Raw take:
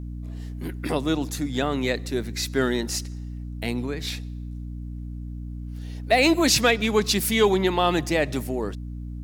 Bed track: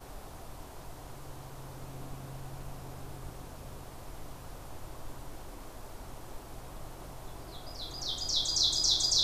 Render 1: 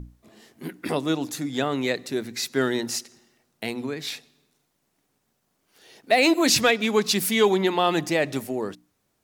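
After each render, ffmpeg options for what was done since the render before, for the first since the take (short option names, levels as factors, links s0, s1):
-af "bandreject=f=60:t=h:w=6,bandreject=f=120:t=h:w=6,bandreject=f=180:t=h:w=6,bandreject=f=240:t=h:w=6,bandreject=f=300:t=h:w=6"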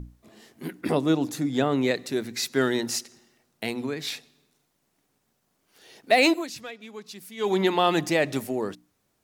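-filter_complex "[0:a]asettb=1/sr,asplit=3[s0][s1][s2];[s0]atrim=end=0.814[s3];[s1]atrim=start=0.81:end=1.91,asetpts=PTS-STARTPTS,afade=t=in:d=0.004:c=qsin,afade=t=out:st=1.096:d=0.004:c=qsin,tiltshelf=f=970:g=3.5[s4];[s2]atrim=start=1.906[s5];[s3][s4]acrossfade=d=0.004:c1=hsin:c2=qsin[s6];[s6][s5]acrossfade=d=0.004:c1=qsin:c2=hsin,asplit=3[s7][s8][s9];[s7]atrim=end=6.47,asetpts=PTS-STARTPTS,afade=t=out:st=6.25:d=0.22:silence=0.105925[s10];[s8]atrim=start=6.47:end=7.37,asetpts=PTS-STARTPTS,volume=0.106[s11];[s9]atrim=start=7.37,asetpts=PTS-STARTPTS,afade=t=in:d=0.22:silence=0.105925[s12];[s10][s11][s12]concat=n=3:v=0:a=1"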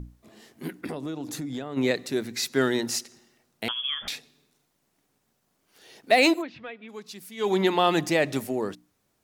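-filter_complex "[0:a]asplit=3[s0][s1][s2];[s0]afade=t=out:st=0.77:d=0.02[s3];[s1]acompressor=threshold=0.0355:ratio=12:attack=3.2:release=140:knee=1:detection=peak,afade=t=in:st=0.77:d=0.02,afade=t=out:st=1.76:d=0.02[s4];[s2]afade=t=in:st=1.76:d=0.02[s5];[s3][s4][s5]amix=inputs=3:normalize=0,asettb=1/sr,asplit=3[s6][s7][s8];[s6]atrim=end=3.684[s9];[s7]atrim=start=3.68:end=4.08,asetpts=PTS-STARTPTS,afade=t=in:d=0.004:c=qsin,afade=t=out:st=0.396:d=0.004:c=qsin,lowpass=f=3100:t=q:w=0.5098,lowpass=f=3100:t=q:w=0.6013,lowpass=f=3100:t=q:w=0.9,lowpass=f=3100:t=q:w=2.563,afreqshift=-3600[s10];[s8]atrim=start=4.076[s11];[s9][s10]acrossfade=d=0.004:c1=hsin:c2=qsin[s12];[s12][s11]acrossfade=d=0.004:c1=qsin:c2=hsin,asplit=3[s13][s14][s15];[s13]afade=t=out:st=6.41:d=0.02[s16];[s14]lowpass=f=3000:w=0.5412,lowpass=f=3000:w=1.3066,afade=t=in:st=6.41:d=0.02,afade=t=out:st=6.88:d=0.02[s17];[s15]afade=t=in:st=6.88:d=0.02[s18];[s16][s17][s18]amix=inputs=3:normalize=0"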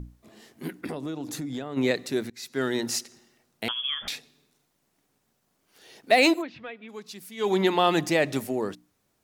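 -filter_complex "[0:a]asplit=2[s0][s1];[s0]atrim=end=2.3,asetpts=PTS-STARTPTS,afade=t=out:st=2.296:d=0.004:c=hsin:silence=0.0944061[s2];[s1]atrim=start=2.3,asetpts=PTS-STARTPTS,afade=t=in:d=0.57:silence=0.0944061[s3];[s2][s3]concat=n=2:v=0:a=1"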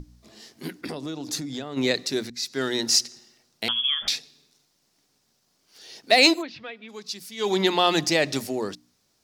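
-af "equalizer=f=5000:w=1.2:g=12.5,bandreject=f=60:t=h:w=6,bandreject=f=120:t=h:w=6,bandreject=f=180:t=h:w=6,bandreject=f=240:t=h:w=6"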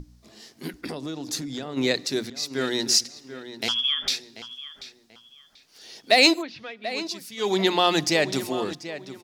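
-filter_complex "[0:a]asplit=2[s0][s1];[s1]adelay=737,lowpass=f=3500:p=1,volume=0.237,asplit=2[s2][s3];[s3]adelay=737,lowpass=f=3500:p=1,volume=0.32,asplit=2[s4][s5];[s5]adelay=737,lowpass=f=3500:p=1,volume=0.32[s6];[s0][s2][s4][s6]amix=inputs=4:normalize=0"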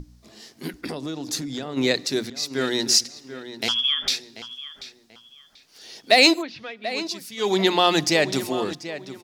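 -af "volume=1.26,alimiter=limit=0.794:level=0:latency=1"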